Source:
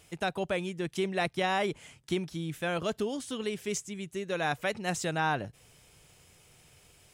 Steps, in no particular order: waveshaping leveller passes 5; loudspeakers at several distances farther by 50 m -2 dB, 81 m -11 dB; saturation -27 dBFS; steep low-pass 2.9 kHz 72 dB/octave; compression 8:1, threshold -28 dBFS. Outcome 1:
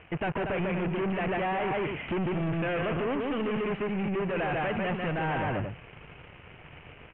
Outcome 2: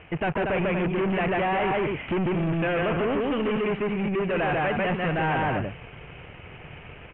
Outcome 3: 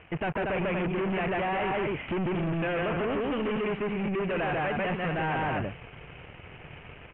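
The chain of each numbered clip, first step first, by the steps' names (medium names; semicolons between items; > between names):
compression > waveshaping leveller > loudspeakers at several distances > saturation > steep low-pass; saturation > compression > loudspeakers at several distances > waveshaping leveller > steep low-pass; loudspeakers at several distances > compression > waveshaping leveller > saturation > steep low-pass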